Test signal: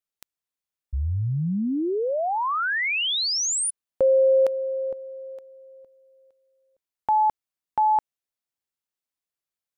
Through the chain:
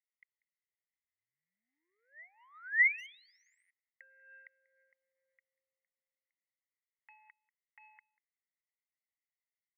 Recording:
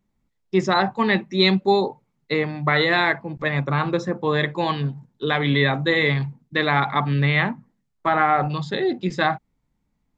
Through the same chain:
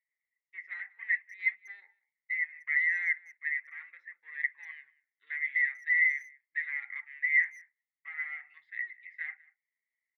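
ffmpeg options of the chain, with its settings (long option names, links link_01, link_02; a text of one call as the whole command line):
ffmpeg -i in.wav -filter_complex "[0:a]asplit=2[link_01][link_02];[link_02]acompressor=threshold=-32dB:ratio=6:release=255,volume=-2dB[link_03];[link_01][link_03]amix=inputs=2:normalize=0,aphaser=in_gain=1:out_gain=1:delay=4.4:decay=0.27:speed=0.46:type=triangular,asoftclip=type=tanh:threshold=-14dB,asuperpass=centerf=2000:order=4:qfactor=7.3,asplit=2[link_04][link_05];[link_05]adelay=190,highpass=300,lowpass=3400,asoftclip=type=hard:threshold=-24.5dB,volume=-23dB[link_06];[link_04][link_06]amix=inputs=2:normalize=0" out.wav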